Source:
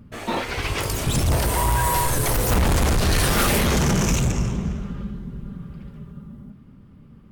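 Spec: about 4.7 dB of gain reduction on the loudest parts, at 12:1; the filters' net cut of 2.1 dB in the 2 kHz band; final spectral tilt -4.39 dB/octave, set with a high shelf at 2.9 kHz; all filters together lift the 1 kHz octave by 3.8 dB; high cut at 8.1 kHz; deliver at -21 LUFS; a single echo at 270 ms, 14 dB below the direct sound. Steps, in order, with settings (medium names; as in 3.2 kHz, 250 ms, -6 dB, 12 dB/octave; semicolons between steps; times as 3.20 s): low-pass 8.1 kHz; peaking EQ 1 kHz +5 dB; peaking EQ 2 kHz -8 dB; treble shelf 2.9 kHz +9 dB; compression 12:1, threshold -20 dBFS; delay 270 ms -14 dB; trim +3 dB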